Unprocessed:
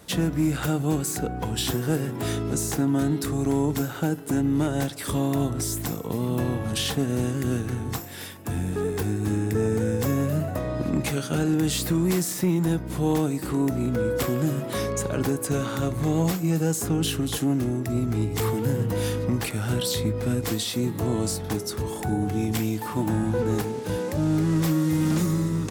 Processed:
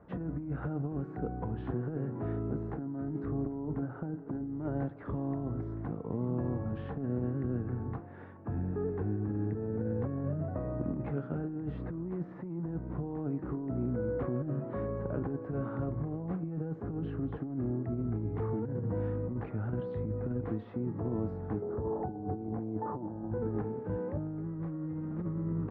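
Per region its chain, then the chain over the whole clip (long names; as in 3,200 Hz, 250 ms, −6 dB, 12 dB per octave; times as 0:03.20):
0:03.32–0:04.50: high-shelf EQ 3,400 Hz −11 dB + double-tracking delay 32 ms −12.5 dB
0:21.62–0:23.31: low-pass filter 1,400 Hz + parametric band 600 Hz +9 dB 2.1 octaves
whole clip: low-pass filter 1,400 Hz 24 dB per octave; dynamic equaliser 1,100 Hz, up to −4 dB, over −40 dBFS, Q 0.88; compressor whose output falls as the input rises −25 dBFS, ratio −0.5; level −8 dB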